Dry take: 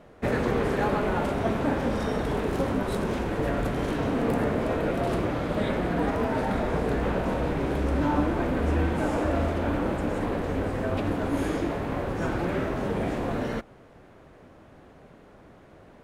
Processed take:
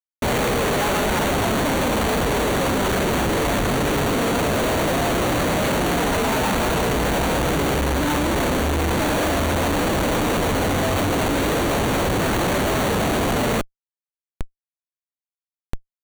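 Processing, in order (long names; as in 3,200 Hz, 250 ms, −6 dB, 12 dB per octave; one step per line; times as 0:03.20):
floating-point word with a short mantissa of 2 bits
formants moved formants +3 semitones
comparator with hysteresis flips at −38.5 dBFS
Butterworth band-reject 5,100 Hz, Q 6.7
level +7 dB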